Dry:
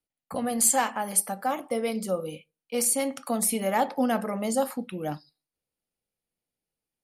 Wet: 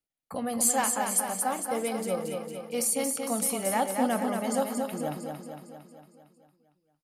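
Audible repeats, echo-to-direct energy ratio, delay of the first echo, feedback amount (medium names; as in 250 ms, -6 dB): 7, -3.0 dB, 228 ms, 58%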